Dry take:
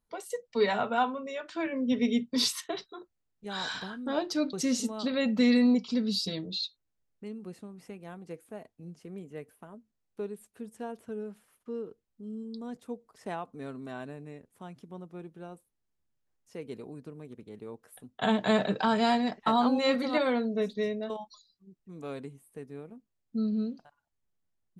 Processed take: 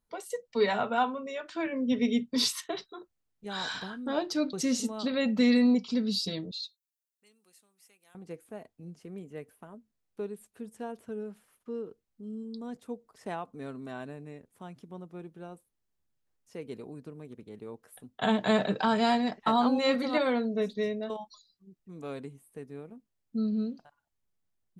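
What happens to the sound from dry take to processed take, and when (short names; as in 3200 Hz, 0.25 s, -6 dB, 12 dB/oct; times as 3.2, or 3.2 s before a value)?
6.51–8.15 differentiator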